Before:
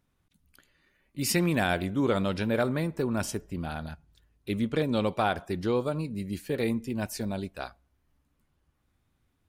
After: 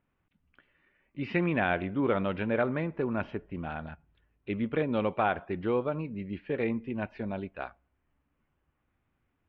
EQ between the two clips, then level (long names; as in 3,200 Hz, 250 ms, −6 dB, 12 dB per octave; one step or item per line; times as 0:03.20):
Butterworth low-pass 2,900 Hz 36 dB per octave
low-shelf EQ 200 Hz −6 dB
0.0 dB